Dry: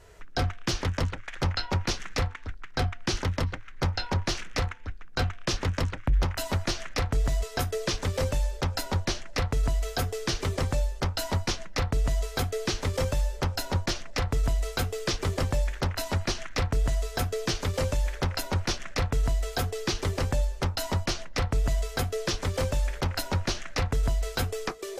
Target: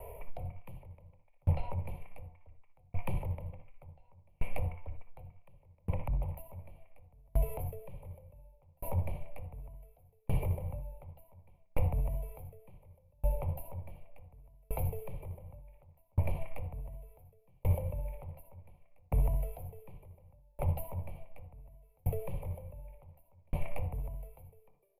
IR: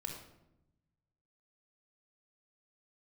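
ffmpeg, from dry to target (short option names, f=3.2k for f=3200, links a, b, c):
-filter_complex "[0:a]firequalizer=gain_entry='entry(180,0);entry(340,-7);entry(570,12);entry(1000,3);entry(1500,-29);entry(2300,2);entry(3900,-27);entry(7200,-28);entry(11000,13)':delay=0.05:min_phase=1,acrossover=split=310[a][b];[a]asoftclip=type=tanh:threshold=-26dB[c];[c][b]amix=inputs=2:normalize=0,aecho=1:1:60|74:0.299|0.178,acompressor=threshold=-26dB:ratio=6,asplit=2[d][e];[1:a]atrim=start_sample=2205,atrim=end_sample=4410[f];[e][f]afir=irnorm=-1:irlink=0,volume=2dB[g];[d][g]amix=inputs=2:normalize=0,acrossover=split=210[h][i];[i]acompressor=threshold=-36dB:ratio=10[j];[h][j]amix=inputs=2:normalize=0,asuperstop=centerf=5500:order=4:qfactor=3.7,aeval=exprs='val(0)*pow(10,-39*if(lt(mod(0.68*n/s,1),2*abs(0.68)/1000),1-mod(0.68*n/s,1)/(2*abs(0.68)/1000),(mod(0.68*n/s,1)-2*abs(0.68)/1000)/(1-2*abs(0.68)/1000))/20)':c=same"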